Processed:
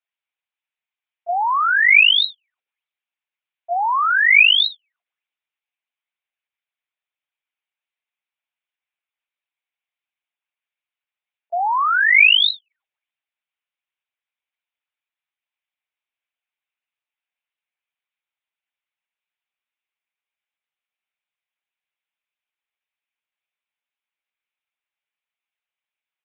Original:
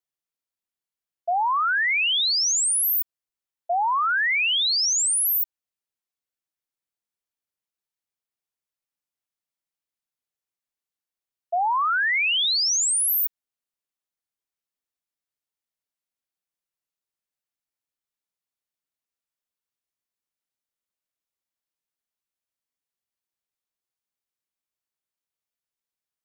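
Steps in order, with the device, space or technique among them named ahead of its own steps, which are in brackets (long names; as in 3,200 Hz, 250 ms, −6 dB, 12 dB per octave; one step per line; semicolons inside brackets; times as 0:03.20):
talking toy (linear-prediction vocoder at 8 kHz pitch kept; high-pass filter 660 Hz 12 dB per octave; parametric band 2,400 Hz +8.5 dB 0.58 octaves)
level +4 dB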